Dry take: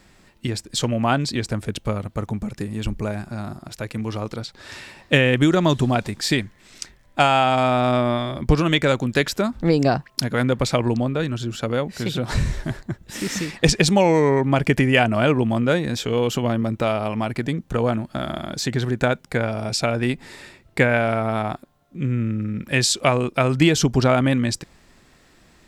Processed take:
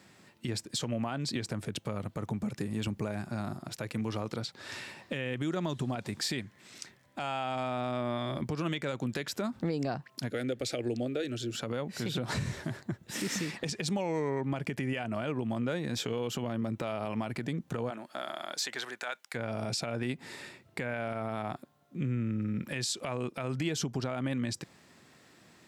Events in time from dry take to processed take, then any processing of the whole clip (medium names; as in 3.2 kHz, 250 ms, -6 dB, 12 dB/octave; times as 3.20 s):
10.30–11.55 s: static phaser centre 410 Hz, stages 4
17.89–19.34 s: high-pass 390 Hz -> 1.3 kHz
whole clip: high-pass 100 Hz 24 dB/octave; compression 6:1, threshold -24 dBFS; peak limiter -18.5 dBFS; trim -4 dB